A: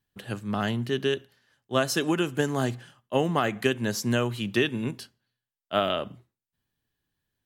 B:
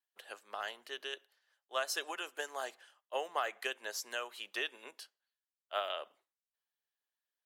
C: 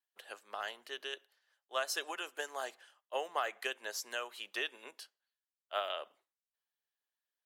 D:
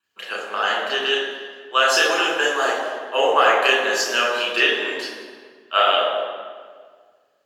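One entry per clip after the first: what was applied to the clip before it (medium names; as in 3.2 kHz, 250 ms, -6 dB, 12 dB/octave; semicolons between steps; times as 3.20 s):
high-pass 530 Hz 24 dB/octave; harmonic-percussive split harmonic -5 dB; trim -7.5 dB
no audible change
reverberation RT60 1.7 s, pre-delay 3 ms, DRR -4.5 dB; trim +8.5 dB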